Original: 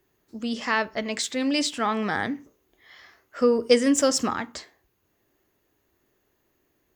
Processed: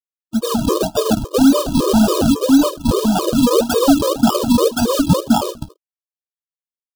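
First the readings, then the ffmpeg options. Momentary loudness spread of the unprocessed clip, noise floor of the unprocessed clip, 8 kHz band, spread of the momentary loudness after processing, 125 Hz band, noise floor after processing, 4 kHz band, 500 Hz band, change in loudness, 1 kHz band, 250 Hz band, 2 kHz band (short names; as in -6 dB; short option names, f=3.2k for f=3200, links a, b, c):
13 LU, -72 dBFS, +6.5 dB, 5 LU, +21.5 dB, under -85 dBFS, +7.5 dB, +8.5 dB, +9.0 dB, +9.5 dB, +14.0 dB, -2.5 dB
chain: -filter_complex "[0:a]aemphasis=mode=reproduction:type=50kf,aresample=8000,asoftclip=type=tanh:threshold=-18dB,aresample=44100,flanger=delay=2.6:depth=9.9:regen=-81:speed=1.9:shape=triangular,asplit=2[a][b];[b]adelay=22,volume=-8dB[c];[a][c]amix=inputs=2:normalize=0,acrusher=samples=41:mix=1:aa=0.000001:lfo=1:lforange=41:lforate=1.8,aeval=exprs='sgn(val(0))*max(abs(val(0))-0.00178,0)':c=same,asuperstop=centerf=2000:order=4:qfactor=1.1,asplit=2[d][e];[e]aecho=0:1:1071:0.596[f];[d][f]amix=inputs=2:normalize=0,alimiter=level_in=26.5dB:limit=-1dB:release=50:level=0:latency=1,afftfilt=real='re*gt(sin(2*PI*3.6*pts/sr)*(1-2*mod(floor(b*sr/1024/320),2)),0)':imag='im*gt(sin(2*PI*3.6*pts/sr)*(1-2*mod(floor(b*sr/1024/320),2)),0)':win_size=1024:overlap=0.75,volume=-2dB"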